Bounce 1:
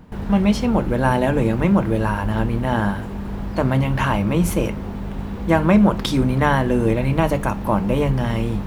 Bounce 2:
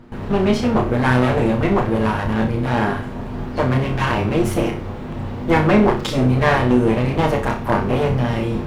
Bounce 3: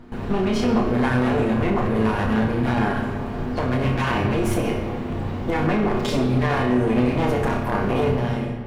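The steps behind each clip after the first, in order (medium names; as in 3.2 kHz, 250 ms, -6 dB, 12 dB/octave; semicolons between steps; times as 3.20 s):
comb filter that takes the minimum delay 8.5 ms; treble shelf 8.6 kHz -11.5 dB; on a send: flutter echo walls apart 5.5 m, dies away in 0.33 s; on the sum: trim +1.5 dB
fade out at the end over 0.65 s; peak limiter -13 dBFS, peak gain reduction 11 dB; on a send at -3.5 dB: reverberation RT60 1.6 s, pre-delay 3 ms; on the sum: trim -1 dB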